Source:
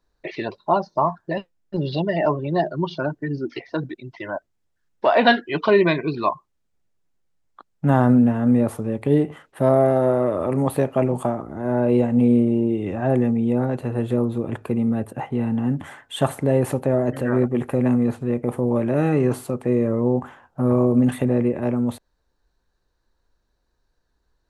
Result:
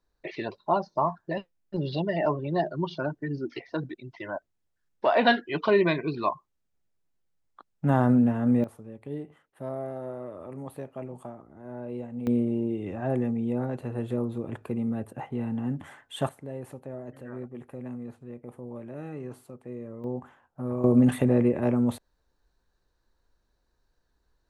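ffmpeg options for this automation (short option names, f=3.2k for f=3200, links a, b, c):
-af "asetnsamples=n=441:p=0,asendcmd='8.64 volume volume -18dB;12.27 volume volume -8dB;16.29 volume volume -19dB;20.04 volume volume -12.5dB;20.84 volume volume -2dB',volume=-5.5dB"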